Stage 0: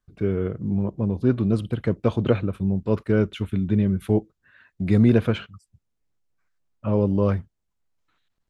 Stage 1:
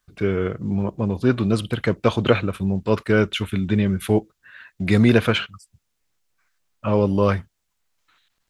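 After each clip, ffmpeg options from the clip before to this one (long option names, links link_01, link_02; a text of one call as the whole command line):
ffmpeg -i in.wav -af "tiltshelf=frequency=780:gain=-6.5,volume=6.5dB" out.wav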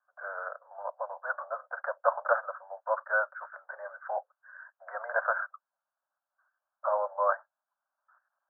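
ffmpeg -i in.wav -af "asuperpass=centerf=950:order=20:qfactor=0.88,volume=-1dB" out.wav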